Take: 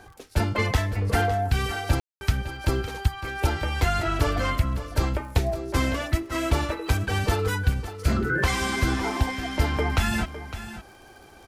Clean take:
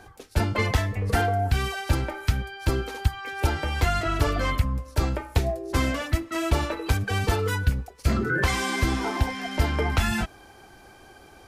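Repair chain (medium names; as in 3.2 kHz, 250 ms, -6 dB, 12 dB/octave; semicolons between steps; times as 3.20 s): de-click; room tone fill 2.00–2.21 s; inverse comb 558 ms -12.5 dB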